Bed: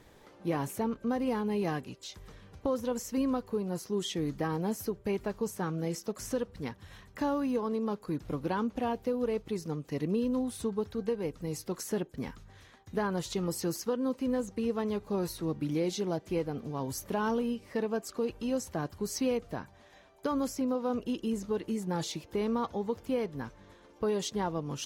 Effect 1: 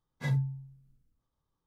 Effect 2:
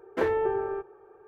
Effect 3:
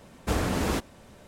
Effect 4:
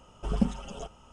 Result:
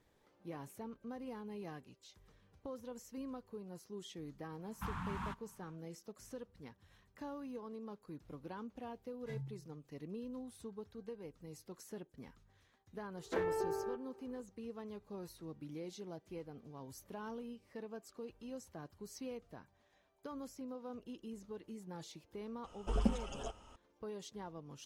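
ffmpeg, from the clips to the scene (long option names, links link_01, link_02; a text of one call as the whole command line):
ffmpeg -i bed.wav -i cue0.wav -i cue1.wav -i cue2.wav -i cue3.wav -filter_complex "[0:a]volume=-15.5dB[link_01];[3:a]firequalizer=gain_entry='entry(120,0);entry(170,7);entry(360,-21);entry(590,-19);entry(940,10);entry(2000,-1);entry(3300,-2);entry(4700,-12);entry(7200,-11);entry(15000,-16)':delay=0.05:min_phase=1[link_02];[2:a]aecho=1:1:153|306|459|612:0.1|0.048|0.023|0.0111[link_03];[4:a]equalizer=frequency=160:width=3.4:gain=-14.5[link_04];[link_02]atrim=end=1.27,asetpts=PTS-STARTPTS,volume=-16dB,afade=type=in:duration=0.1,afade=type=out:start_time=1.17:duration=0.1,adelay=4540[link_05];[1:a]atrim=end=1.66,asetpts=PTS-STARTPTS,volume=-16dB,afade=type=in:duration=0.004:curve=hsin,afade=type=out:start_time=1.656:duration=0.004:curve=hsin,adelay=9050[link_06];[link_03]atrim=end=1.27,asetpts=PTS-STARTPTS,volume=-10dB,afade=type=in:duration=0.004:curve=hsin,afade=type=out:start_time=1.266:duration=0.004:curve=hsin,adelay=13150[link_07];[link_04]atrim=end=1.12,asetpts=PTS-STARTPTS,volume=-3.5dB,afade=type=in:duration=0.004:curve=hsin,afade=type=out:start_time=1.116:duration=0.004:curve=hsin,adelay=22640[link_08];[link_01][link_05][link_06][link_07][link_08]amix=inputs=5:normalize=0" out.wav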